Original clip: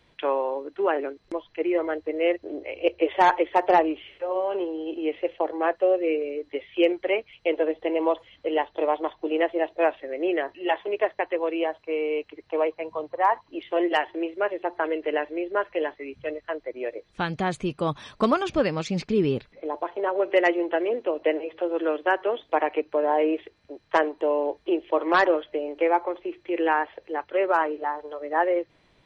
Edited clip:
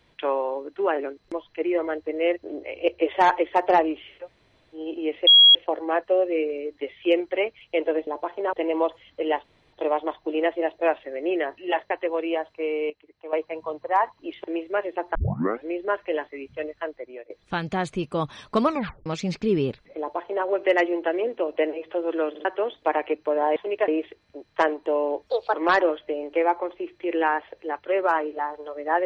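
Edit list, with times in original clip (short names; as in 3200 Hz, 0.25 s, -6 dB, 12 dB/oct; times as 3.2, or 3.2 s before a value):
4.23–4.77 room tone, crossfade 0.10 s
5.27 add tone 3300 Hz -9 dBFS 0.28 s
8.7 insert room tone 0.29 s
10.77–11.09 move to 23.23
12.19–12.62 gain -11.5 dB
13.73–14.11 cut
14.82 tape start 0.50 s
16.52–16.97 fade out, to -18 dB
18.33 tape stop 0.40 s
19.66–20.12 copy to 7.79
21.97 stutter in place 0.05 s, 3 plays
24.62–24.99 speed 138%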